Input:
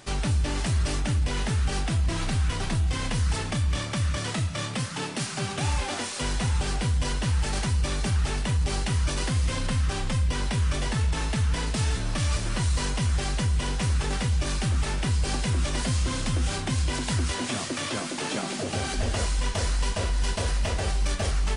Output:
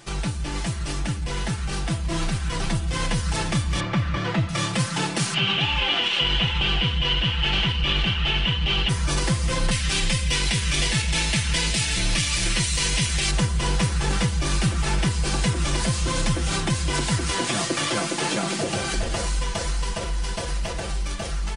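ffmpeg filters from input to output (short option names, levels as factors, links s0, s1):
-filter_complex "[0:a]asettb=1/sr,asplit=3[s0][s1][s2];[s0]atrim=end=3.804[s3];[s1]atrim=start=3.8:end=4.49,asetpts=PTS-STARTPTS,afade=t=in:d=0.004:c=qsin,afade=t=out:st=0.686:d=0.004:c=qsin,lowpass=2700[s4];[s2]atrim=start=4.486[s5];[s3][s4]acrossfade=d=0.004:c1=hsin:c2=qsin[s6];[s6][s5]acrossfade=d=0.004:c1=qsin:c2=hsin,asettb=1/sr,asplit=3[s7][s8][s9];[s7]atrim=end=5.344[s10];[s8]atrim=start=5.34:end=8.89,asetpts=PTS-STARTPTS,afade=t=in:d=0.004:c=qsin,afade=t=out:st=3.546:d=0.004:c=qsin,lowpass=f=3000:t=q:w=8.9[s11];[s9]atrim=start=8.886[s12];[s10][s11]acrossfade=d=0.004:c1=hsin:c2=qsin[s13];[s13][s12]acrossfade=d=0.004:c1=qsin:c2=hsin,asettb=1/sr,asplit=3[s14][s15][s16];[s14]atrim=end=9.714[s17];[s15]atrim=start=9.71:end=13.31,asetpts=PTS-STARTPTS,afade=t=in:d=0.004:c=qsin,afade=t=out:st=3.596:d=0.004:c=qsin,highshelf=f=1700:t=q:w=1.5:g=8[s18];[s16]atrim=start=13.306[s19];[s17][s18]acrossfade=d=0.004:c1=hsin:c2=qsin[s20];[s20][s19]acrossfade=d=0.004:c1=qsin:c2=hsin,alimiter=limit=0.106:level=0:latency=1:release=57,dynaudnorm=f=170:g=31:m=1.78,aecho=1:1:5.9:0.65"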